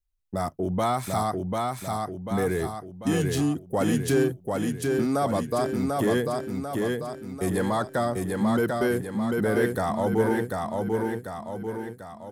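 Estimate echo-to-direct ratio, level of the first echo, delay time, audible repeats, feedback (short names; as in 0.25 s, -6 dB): -1.5 dB, -3.0 dB, 0.743 s, 6, 51%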